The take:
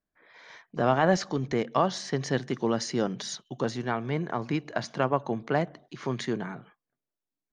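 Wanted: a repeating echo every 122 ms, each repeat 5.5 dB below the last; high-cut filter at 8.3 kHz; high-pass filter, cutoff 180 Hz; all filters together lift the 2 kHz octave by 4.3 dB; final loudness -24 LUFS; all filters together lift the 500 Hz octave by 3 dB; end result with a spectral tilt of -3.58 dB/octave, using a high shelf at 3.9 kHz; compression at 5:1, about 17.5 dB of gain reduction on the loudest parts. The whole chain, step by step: high-pass 180 Hz; low-pass 8.3 kHz; peaking EQ 500 Hz +3.5 dB; peaking EQ 2 kHz +4 dB; treble shelf 3.9 kHz +6.5 dB; compression 5:1, threshold -36 dBFS; feedback delay 122 ms, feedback 53%, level -5.5 dB; trim +14.5 dB

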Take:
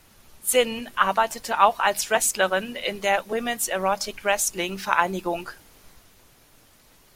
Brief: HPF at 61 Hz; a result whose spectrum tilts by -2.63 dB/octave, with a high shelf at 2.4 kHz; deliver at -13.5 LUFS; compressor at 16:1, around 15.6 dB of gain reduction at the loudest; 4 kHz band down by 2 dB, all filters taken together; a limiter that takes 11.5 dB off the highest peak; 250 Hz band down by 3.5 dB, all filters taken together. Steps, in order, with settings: high-pass 61 Hz; peaking EQ 250 Hz -5 dB; treble shelf 2.4 kHz +5 dB; peaking EQ 4 kHz -8.5 dB; compression 16:1, threshold -26 dBFS; trim +21.5 dB; peak limiter -2.5 dBFS

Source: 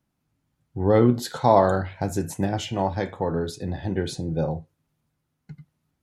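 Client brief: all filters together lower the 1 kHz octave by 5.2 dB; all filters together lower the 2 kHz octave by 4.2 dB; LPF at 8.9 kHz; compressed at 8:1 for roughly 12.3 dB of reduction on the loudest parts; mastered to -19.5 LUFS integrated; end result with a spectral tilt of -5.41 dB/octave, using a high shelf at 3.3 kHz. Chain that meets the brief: low-pass 8.9 kHz; peaking EQ 1 kHz -7 dB; peaking EQ 2 kHz -4.5 dB; treble shelf 3.3 kHz +6.5 dB; compression 8:1, threshold -26 dBFS; trim +13 dB

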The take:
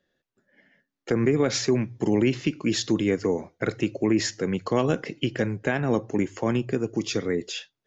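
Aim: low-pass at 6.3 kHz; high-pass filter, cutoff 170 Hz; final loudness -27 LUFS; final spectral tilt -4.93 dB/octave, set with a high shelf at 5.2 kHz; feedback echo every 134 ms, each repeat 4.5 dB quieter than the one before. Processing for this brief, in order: high-pass 170 Hz; low-pass 6.3 kHz; treble shelf 5.2 kHz -6 dB; feedback delay 134 ms, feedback 60%, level -4.5 dB; trim -2.5 dB

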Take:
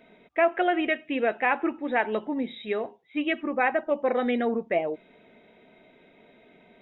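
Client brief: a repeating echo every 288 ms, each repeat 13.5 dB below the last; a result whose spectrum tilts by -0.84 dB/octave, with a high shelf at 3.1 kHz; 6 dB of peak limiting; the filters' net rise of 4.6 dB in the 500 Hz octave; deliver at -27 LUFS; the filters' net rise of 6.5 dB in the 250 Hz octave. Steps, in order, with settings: peaking EQ 250 Hz +6.5 dB; peaking EQ 500 Hz +4.5 dB; treble shelf 3.1 kHz -5.5 dB; peak limiter -15.5 dBFS; feedback delay 288 ms, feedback 21%, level -13.5 dB; trim -1.5 dB

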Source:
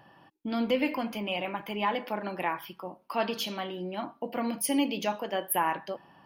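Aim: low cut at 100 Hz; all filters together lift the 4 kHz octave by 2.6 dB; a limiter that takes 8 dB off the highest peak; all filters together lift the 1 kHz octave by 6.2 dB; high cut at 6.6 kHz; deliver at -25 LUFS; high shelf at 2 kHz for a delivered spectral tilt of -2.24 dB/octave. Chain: high-pass 100 Hz; low-pass 6.6 kHz; peaking EQ 1 kHz +8 dB; treble shelf 2 kHz -5 dB; peaking EQ 4 kHz +9 dB; trim +6 dB; peak limiter -12.5 dBFS

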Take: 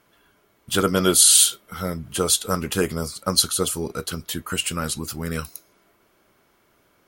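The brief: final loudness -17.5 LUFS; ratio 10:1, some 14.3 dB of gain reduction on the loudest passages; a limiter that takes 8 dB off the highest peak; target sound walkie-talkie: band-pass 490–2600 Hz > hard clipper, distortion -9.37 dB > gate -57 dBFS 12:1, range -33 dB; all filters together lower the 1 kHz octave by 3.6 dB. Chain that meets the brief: peaking EQ 1 kHz -5 dB; compression 10:1, threshold -25 dBFS; peak limiter -20.5 dBFS; band-pass 490–2600 Hz; hard clipper -36 dBFS; gate -57 dBFS 12:1, range -33 dB; trim +25 dB

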